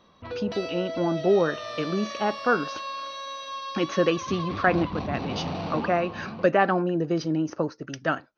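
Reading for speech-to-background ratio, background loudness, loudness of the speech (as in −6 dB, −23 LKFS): 8.0 dB, −34.5 LKFS, −26.5 LKFS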